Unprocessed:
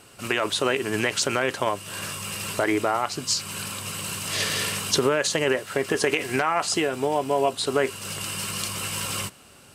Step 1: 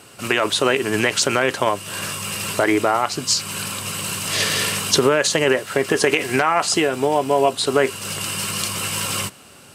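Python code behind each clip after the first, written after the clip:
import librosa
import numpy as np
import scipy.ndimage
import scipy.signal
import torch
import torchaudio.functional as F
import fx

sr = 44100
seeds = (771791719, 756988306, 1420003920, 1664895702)

y = scipy.signal.sosfilt(scipy.signal.butter(2, 81.0, 'highpass', fs=sr, output='sos'), x)
y = F.gain(torch.from_numpy(y), 5.5).numpy()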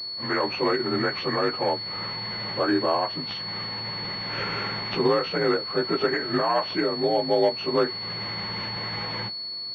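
y = fx.partial_stretch(x, sr, pct=87)
y = fx.pwm(y, sr, carrier_hz=4400.0)
y = F.gain(torch.from_numpy(y), -3.5).numpy()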